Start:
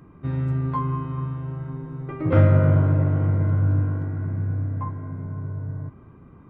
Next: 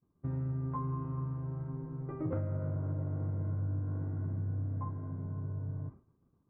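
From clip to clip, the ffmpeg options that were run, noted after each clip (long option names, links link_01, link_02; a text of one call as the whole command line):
ffmpeg -i in.wav -af "agate=range=-33dB:threshold=-35dB:ratio=3:detection=peak,lowpass=1100,acompressor=threshold=-24dB:ratio=16,volume=-7dB" out.wav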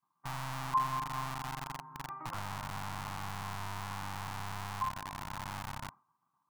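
ffmpeg -i in.wav -filter_complex "[0:a]equalizer=frequency=125:width_type=o:width=1:gain=6,equalizer=frequency=250:width_type=o:width=1:gain=-5,equalizer=frequency=500:width_type=o:width=1:gain=-7,equalizer=frequency=1000:width_type=o:width=1:gain=5,acrossover=split=180|570[link_01][link_02][link_03];[link_01]acrusher=bits=3:dc=4:mix=0:aa=0.000001[link_04];[link_04][link_02][link_03]amix=inputs=3:normalize=0,lowshelf=frequency=660:width_type=q:width=3:gain=-10.5,volume=1dB" out.wav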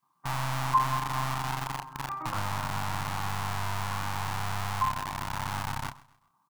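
ffmpeg -i in.wav -filter_complex "[0:a]asplit=2[link_01][link_02];[link_02]adelay=29,volume=-7dB[link_03];[link_01][link_03]amix=inputs=2:normalize=0,aecho=1:1:130|260|390:0.0944|0.0349|0.0129,volume=7dB" out.wav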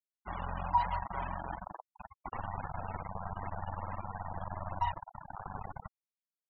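ffmpeg -i in.wav -af "afreqshift=-88,aeval=exprs='val(0)*gte(abs(val(0)),0.0376)':channel_layout=same,afftfilt=real='re*gte(hypot(re,im),0.0355)':imag='im*gte(hypot(re,im),0.0355)':win_size=1024:overlap=0.75,volume=-4dB" out.wav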